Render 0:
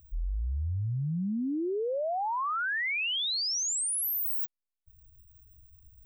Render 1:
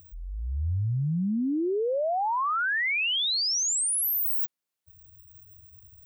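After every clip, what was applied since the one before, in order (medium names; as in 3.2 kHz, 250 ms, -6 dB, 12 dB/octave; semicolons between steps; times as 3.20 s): high-pass 99 Hz 12 dB/octave; peak limiter -32 dBFS, peak gain reduction 4.5 dB; trim +8.5 dB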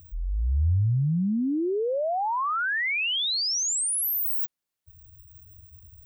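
bass shelf 100 Hz +9.5 dB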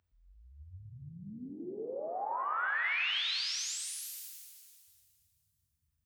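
band-pass filter 2 kHz, Q 0.58; pitch-shifted reverb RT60 2.1 s, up +7 st, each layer -8 dB, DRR 1.5 dB; trim -8 dB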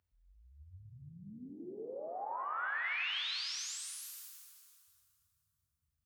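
band-passed feedback delay 146 ms, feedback 73%, band-pass 1.2 kHz, level -13.5 dB; trim -4.5 dB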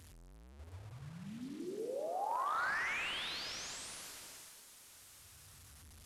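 one-bit delta coder 64 kbps, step -53.5 dBFS; trim +3 dB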